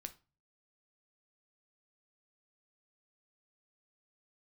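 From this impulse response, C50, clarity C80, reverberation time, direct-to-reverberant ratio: 17.0 dB, 23.5 dB, 0.30 s, 8.0 dB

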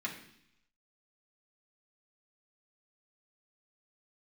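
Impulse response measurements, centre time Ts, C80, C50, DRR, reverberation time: 21 ms, 11.0 dB, 8.0 dB, -4.0 dB, 0.70 s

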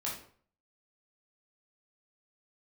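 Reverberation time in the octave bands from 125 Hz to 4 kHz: 0.60 s, 0.50 s, 0.50 s, 0.50 s, 0.45 s, 0.35 s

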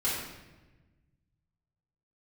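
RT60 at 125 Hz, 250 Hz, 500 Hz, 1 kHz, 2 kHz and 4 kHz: 2.4 s, 1.7 s, 1.3 s, 1.0 s, 1.1 s, 0.85 s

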